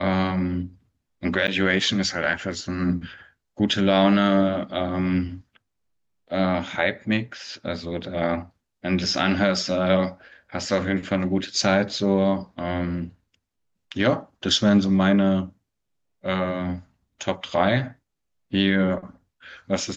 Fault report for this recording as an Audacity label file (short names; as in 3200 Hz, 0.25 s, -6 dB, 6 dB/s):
1.470000	1.480000	gap 8.8 ms